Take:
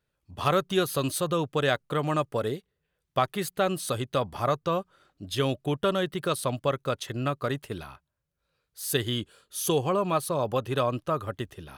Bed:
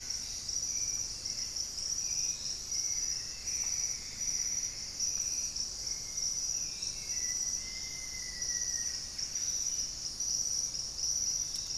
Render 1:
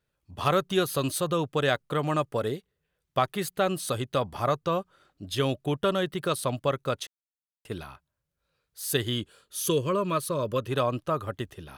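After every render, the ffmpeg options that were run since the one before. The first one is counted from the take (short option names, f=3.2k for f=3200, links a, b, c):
-filter_complex "[0:a]asettb=1/sr,asplit=3[a][b][c];[a]atrim=end=9.634[d];[b]atrim=start=9.63:end=10.67,asetpts=PTS-STARTPTS,afade=t=in:d=0.004:c=qsin,afade=t=out:st=1.036:d=0.004:c=qsin,asuperstop=centerf=780:order=4:qfactor=2.3[e];[c]atrim=start=10.666[f];[d][e]acrossfade=d=0.004:c1=hsin:c2=qsin[g];[g][f]acrossfade=d=0.004:c1=qsin:c2=hsin,asplit=3[h][i][j];[h]atrim=end=7.07,asetpts=PTS-STARTPTS,afade=t=out:st=7.066:d=0.004:c=hsin[k];[i]atrim=start=7.07:end=7.65,asetpts=PTS-STARTPTS,volume=0[l];[j]atrim=start=7.65,asetpts=PTS-STARTPTS,afade=t=in:d=0.004:c=hsin[m];[k][l][m]concat=n=3:v=0:a=1"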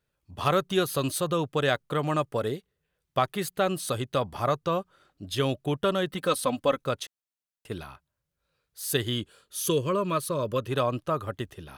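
-filter_complex "[0:a]asettb=1/sr,asplit=3[a][b][c];[a]atrim=end=6.114[d];[b]atrim=start=6.11:end=6.84,asetpts=PTS-STARTPTS,afade=t=in:d=0.004:c=qsin,afade=t=out:st=0.726:d=0.004:c=qsin,aecho=1:1:3.9:0.72,atrim=end_sample=32193[e];[c]atrim=start=6.836[f];[d][e]acrossfade=d=0.004:c1=hsin:c2=qsin[g];[g][f]acrossfade=d=0.004:c1=qsin:c2=hsin"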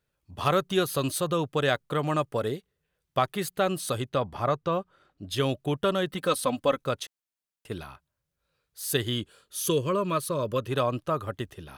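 -filter_complex "[0:a]asettb=1/sr,asplit=3[a][b][c];[a]atrim=end=4.094[d];[b]atrim=start=4.09:end=5.3,asetpts=PTS-STARTPTS,afade=t=in:d=0.004:c=qsin,afade=t=out:st=1.206:d=0.004:c=qsin,highshelf=f=5.3k:g=-10.5[e];[c]atrim=start=5.296[f];[d][e]acrossfade=d=0.004:c1=hsin:c2=qsin[g];[g][f]acrossfade=d=0.004:c1=qsin:c2=hsin"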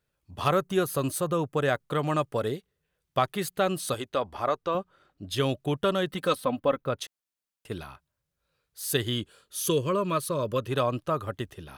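-filter_complex "[0:a]asettb=1/sr,asplit=3[a][b][c];[a]atrim=end=0.504[d];[b]atrim=start=0.5:end=1.8,asetpts=PTS-STARTPTS,afade=t=in:d=0.004:c=qsin,afade=t=out:st=1.296:d=0.004:c=qsin,equalizer=f=3.7k:t=o:w=1.1:g=-8[e];[c]atrim=start=1.796[f];[d][e]acrossfade=d=0.004:c1=hsin:c2=qsin[g];[g][f]acrossfade=d=0.004:c1=qsin:c2=hsin,asettb=1/sr,asplit=3[h][i][j];[h]atrim=end=3.944[k];[i]atrim=start=3.94:end=4.75,asetpts=PTS-STARTPTS,afade=t=in:d=0.004:c=qsin,afade=t=out:st=0.806:d=0.004:c=qsin,equalizer=f=140:w=1.5:g=-14[l];[j]atrim=start=4.746[m];[k][l]acrossfade=d=0.004:c1=hsin:c2=qsin[n];[n][m]acrossfade=d=0.004:c1=qsin:c2=hsin,asettb=1/sr,asplit=3[o][p][q];[o]atrim=end=6.354[r];[p]atrim=start=6.35:end=6.99,asetpts=PTS-STARTPTS,afade=t=in:d=0.004:c=qsin,afade=t=out:st=0.636:d=0.004:c=qsin,equalizer=f=7.2k:w=0.56:g=-14.5[s];[q]atrim=start=6.986[t];[r][s]acrossfade=d=0.004:c1=hsin:c2=qsin[u];[u][t]acrossfade=d=0.004:c1=qsin:c2=hsin"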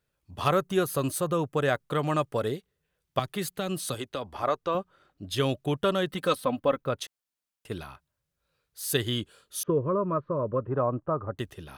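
-filter_complex "[0:a]asettb=1/sr,asplit=3[a][b][c];[a]atrim=end=3.194[d];[b]atrim=start=3.19:end=4.43,asetpts=PTS-STARTPTS,afade=t=in:d=0.004:c=qsin,afade=t=out:st=1.236:d=0.004:c=qsin,acrossover=split=270|3000[e][f][g];[f]acompressor=threshold=-30dB:ratio=6:attack=3.2:release=140:knee=2.83:detection=peak[h];[e][h][g]amix=inputs=3:normalize=0[i];[c]atrim=start=4.426[j];[d][i]acrossfade=d=0.004:c1=hsin:c2=qsin[k];[k][j]acrossfade=d=0.004:c1=qsin:c2=hsin,asettb=1/sr,asplit=3[l][m][n];[l]atrim=end=9.634[o];[m]atrim=start=9.63:end=11.39,asetpts=PTS-STARTPTS,afade=t=in:d=0.004:c=qsin,afade=t=out:st=1.756:d=0.004:c=qsin,lowpass=f=1.3k:w=0.5412,lowpass=f=1.3k:w=1.3066[p];[n]atrim=start=11.386[q];[o][p]acrossfade=d=0.004:c1=hsin:c2=qsin[r];[r][q]acrossfade=d=0.004:c1=qsin:c2=hsin"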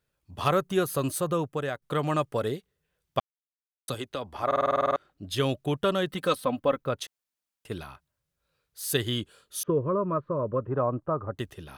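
-filter_complex "[0:a]asplit=14[a][b][c][d][e][f][g][h][i][j][k][l][m][n];[a]atrim=end=1.82,asetpts=PTS-STARTPTS,afade=t=out:st=1.35:d=0.47:silence=0.281838[o];[b]atrim=start=1.82:end=3.2,asetpts=PTS-STARTPTS,afade=t=in:d=0.004:c=hsin:silence=0.281838,afade=t=out:st=1.376:d=0.004:c=hsin[p];[c]atrim=start=3.2:end=3.88,asetpts=PTS-STARTPTS,volume=0[q];[d]atrim=start=3.88:end=4.512,asetpts=PTS-STARTPTS,afade=t=in:d=0.004:c=hsin[r];[e]atrim=start=4.458:end=4.512[s];[f]atrim=start=4.458:end=4.512[t];[g]atrim=start=4.458:end=4.512[u];[h]atrim=start=4.458:end=4.512[v];[i]atrim=start=4.458:end=4.512[w];[j]atrim=start=4.458:end=4.512[x];[k]atrim=start=4.458:end=4.512[y];[l]atrim=start=4.458:end=4.512[z];[m]atrim=start=4.458:end=4.512[aa];[n]atrim=start=4.958[ab];[o][p][q][r]concat=n=4:v=0:a=1[ac];[ac][s]acrossfade=d=0.004:c1=hsin:c2=hsin[ad];[ad][t]acrossfade=d=0.004:c1=hsin:c2=hsin[ae];[ae][u]acrossfade=d=0.004:c1=hsin:c2=hsin[af];[af][v]acrossfade=d=0.004:c1=hsin:c2=hsin[ag];[ag][w]acrossfade=d=0.004:c1=hsin:c2=hsin[ah];[ah][x]acrossfade=d=0.004:c1=hsin:c2=hsin[ai];[ai][y]acrossfade=d=0.004:c1=hsin:c2=hsin[aj];[aj][z]acrossfade=d=0.004:c1=hsin:c2=hsin[ak];[ak][aa]acrossfade=d=0.004:c1=hsin:c2=hsin[al];[al][ab]acrossfade=d=0.004:c1=hsin:c2=hsin"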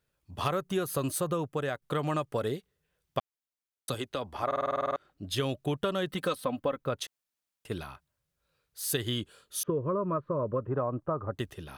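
-af "acompressor=threshold=-26dB:ratio=6"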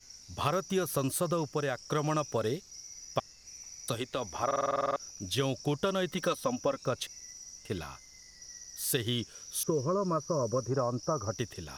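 -filter_complex "[1:a]volume=-13.5dB[a];[0:a][a]amix=inputs=2:normalize=0"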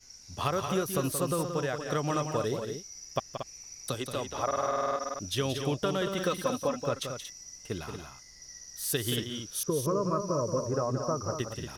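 -af "aecho=1:1:177|231:0.398|0.398"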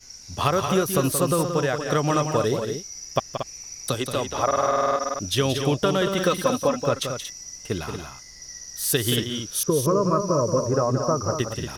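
-af "volume=8dB"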